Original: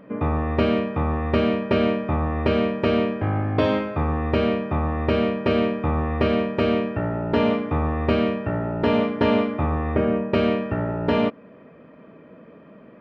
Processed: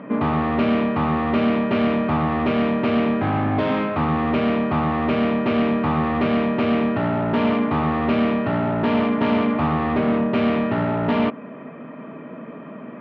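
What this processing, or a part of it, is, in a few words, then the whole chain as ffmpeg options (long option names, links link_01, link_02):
overdrive pedal into a guitar cabinet: -filter_complex "[0:a]asplit=2[link_01][link_02];[link_02]highpass=frequency=720:poles=1,volume=28dB,asoftclip=type=tanh:threshold=-7.5dB[link_03];[link_01][link_03]amix=inputs=2:normalize=0,lowpass=frequency=1600:poles=1,volume=-6dB,highpass=76,equalizer=frequency=100:width_type=q:width=4:gain=5,equalizer=frequency=150:width_type=q:width=4:gain=8,equalizer=frequency=240:width_type=q:width=4:gain=8,equalizer=frequency=510:width_type=q:width=4:gain=-6,equalizer=frequency=1600:width_type=q:width=4:gain=-3,lowpass=frequency=3700:width=0.5412,lowpass=frequency=3700:width=1.3066,volume=-6dB"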